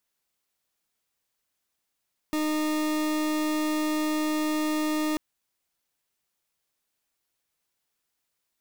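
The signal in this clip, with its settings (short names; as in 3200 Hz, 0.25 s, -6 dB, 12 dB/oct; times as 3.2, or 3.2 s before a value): pulse 307 Hz, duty 40% -26.5 dBFS 2.84 s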